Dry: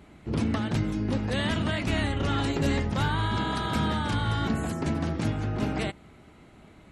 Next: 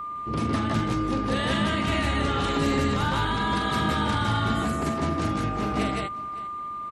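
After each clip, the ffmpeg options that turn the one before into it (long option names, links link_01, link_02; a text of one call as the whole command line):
ffmpeg -i in.wav -af "lowshelf=frequency=150:gain=-4.5,aecho=1:1:44|156|171|563:0.447|0.708|0.668|0.133,aeval=exprs='val(0)+0.0282*sin(2*PI*1200*n/s)':channel_layout=same" out.wav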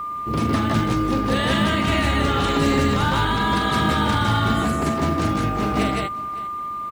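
ffmpeg -i in.wav -af "acrusher=bits=8:mode=log:mix=0:aa=0.000001,volume=5dB" out.wav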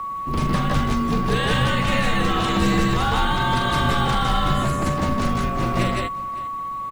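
ffmpeg -i in.wav -af "afreqshift=-79" out.wav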